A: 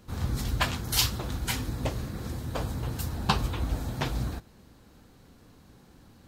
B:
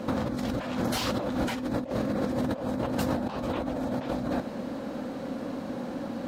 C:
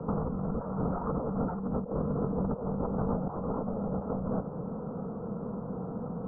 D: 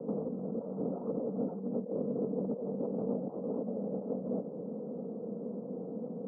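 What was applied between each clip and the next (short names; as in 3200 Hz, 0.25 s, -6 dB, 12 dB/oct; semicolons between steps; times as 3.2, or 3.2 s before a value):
overdrive pedal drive 22 dB, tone 1800 Hz, clips at -6.5 dBFS; small resonant body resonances 250/540 Hz, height 16 dB, ringing for 30 ms; negative-ratio compressor -26 dBFS, ratio -1; gain -4 dB
Chebyshev low-pass 1400 Hz, order 6; frequency shift -60 Hz; gain -1.5 dB
Chebyshev band-pass 230–550 Hz, order 2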